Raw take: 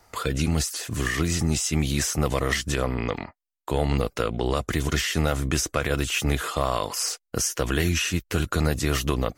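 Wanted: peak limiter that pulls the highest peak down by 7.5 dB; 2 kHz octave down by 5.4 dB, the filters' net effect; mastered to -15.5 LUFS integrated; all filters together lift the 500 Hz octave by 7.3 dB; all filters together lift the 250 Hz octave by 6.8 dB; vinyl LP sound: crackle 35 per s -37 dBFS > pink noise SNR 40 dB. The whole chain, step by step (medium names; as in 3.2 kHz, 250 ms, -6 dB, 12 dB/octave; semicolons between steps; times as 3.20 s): peaking EQ 250 Hz +7 dB; peaking EQ 500 Hz +7 dB; peaking EQ 2 kHz -7.5 dB; peak limiter -12 dBFS; crackle 35 per s -37 dBFS; pink noise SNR 40 dB; trim +9 dB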